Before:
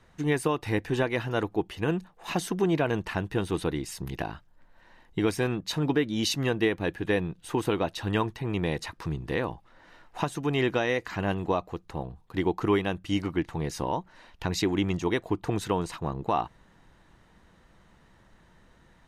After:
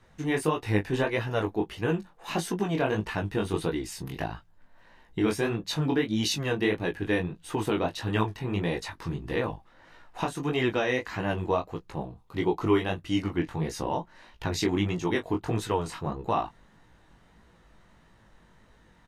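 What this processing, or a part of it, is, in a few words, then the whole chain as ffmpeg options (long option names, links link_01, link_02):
double-tracked vocal: -filter_complex "[0:a]asettb=1/sr,asplit=3[link_01][link_02][link_03];[link_01]atrim=end=12.094[link_04];[link_02]atrim=start=12.09:end=12.76,asetpts=PTS-STARTPTS,afade=type=in:duration=0.004:curve=qsin,afade=type=out:start_time=0.666:duration=0.004:curve=qsin,bandreject=frequency=1700:width=7[link_05];[link_03]atrim=start=12.756[link_06];[link_04][link_05]acrossfade=duration=0.004:curve1=hsin:curve2=qsin[link_07];[link_07][link_06]acrossfade=duration=0.004:curve1=qsin:curve2=hsin,asplit=2[link_08][link_09];[link_09]adelay=19,volume=-10dB[link_10];[link_08][link_10]amix=inputs=2:normalize=0,flanger=delay=16.5:depth=6.9:speed=1.6,volume=2.5dB"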